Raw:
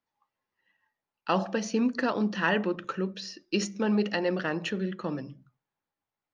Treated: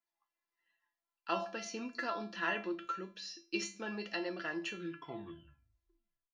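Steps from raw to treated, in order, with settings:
turntable brake at the end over 1.62 s
low-shelf EQ 480 Hz −9.5 dB
tuned comb filter 340 Hz, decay 0.3 s, harmonics all, mix 90%
level +7.5 dB

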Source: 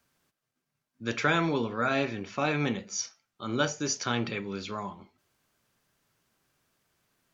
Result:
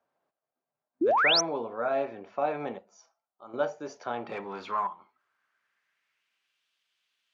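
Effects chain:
0:02.78–0:03.54: octave-band graphic EQ 125/250/500/2,000/4,000 Hz −11/−6/−8/−11/−7 dB
0:04.29–0:04.87: leveller curve on the samples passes 2
band-pass filter sweep 680 Hz → 3,100 Hz, 0:04.09–0:06.64
0:01.01–0:01.41: sound drawn into the spectrogram rise 290–6,400 Hz −28 dBFS
level +5 dB

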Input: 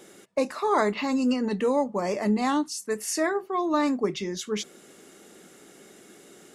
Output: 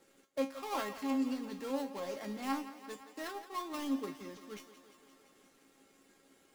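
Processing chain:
gap after every zero crossing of 0.16 ms
tuned comb filter 270 Hz, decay 0.24 s, harmonics all, mix 90%
harmonic and percussive parts rebalanced harmonic −4 dB
on a send: feedback echo with a high-pass in the loop 172 ms, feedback 75%, high-pass 220 Hz, level −13.5 dB
on the sum: level +1 dB

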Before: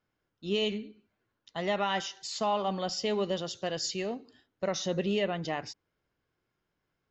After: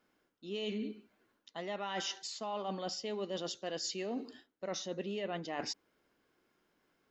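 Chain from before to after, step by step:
low shelf with overshoot 170 Hz −9.5 dB, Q 1.5
reversed playback
downward compressor 10 to 1, threshold −42 dBFS, peak gain reduction 18 dB
reversed playback
level +6.5 dB

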